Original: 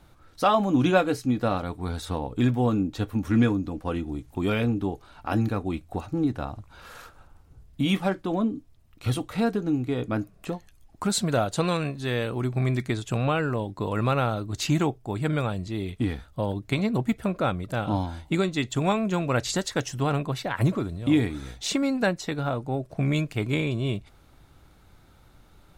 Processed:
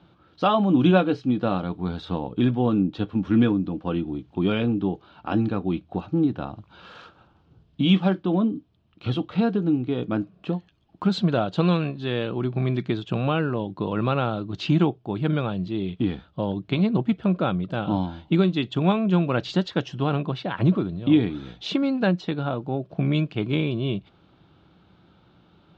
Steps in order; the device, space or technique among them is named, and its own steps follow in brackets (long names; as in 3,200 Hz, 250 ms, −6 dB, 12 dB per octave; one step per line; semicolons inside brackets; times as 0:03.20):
guitar cabinet (loudspeaker in its box 100–4,100 Hz, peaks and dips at 180 Hz +9 dB, 340 Hz +5 dB, 2,000 Hz −7 dB, 3,100 Hz +5 dB)
0:06.57–0:08.19: high-shelf EQ 4,600 Hz +6 dB